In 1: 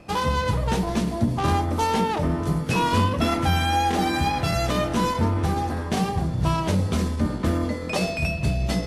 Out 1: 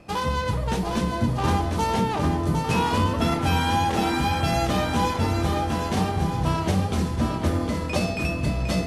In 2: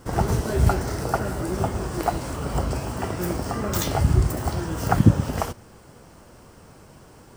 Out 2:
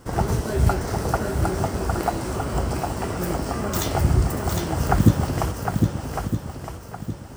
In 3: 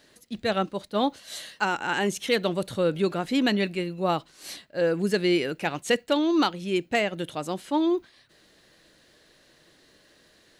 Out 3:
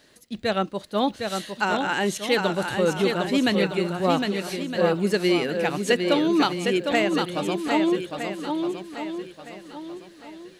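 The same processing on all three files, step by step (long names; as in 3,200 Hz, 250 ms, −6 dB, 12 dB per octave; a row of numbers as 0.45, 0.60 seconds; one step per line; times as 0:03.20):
feedback echo with a long and a short gap by turns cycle 1,263 ms, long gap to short 1.5 to 1, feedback 30%, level −5 dB
loudness normalisation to −24 LKFS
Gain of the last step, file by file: −2.0, 0.0, +1.5 decibels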